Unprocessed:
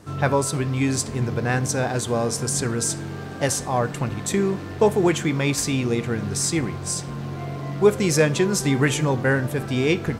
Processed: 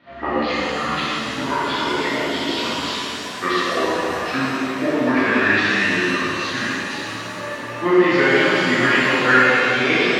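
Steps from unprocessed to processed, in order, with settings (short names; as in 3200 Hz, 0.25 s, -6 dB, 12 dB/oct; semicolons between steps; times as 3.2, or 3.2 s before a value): gliding pitch shift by -11.5 st ending unshifted; speaker cabinet 350–3300 Hz, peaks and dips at 420 Hz -6 dB, 780 Hz -7 dB, 1100 Hz +6 dB, 1800 Hz +8 dB; shimmer reverb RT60 2.4 s, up +7 st, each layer -8 dB, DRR -10 dB; gain -1.5 dB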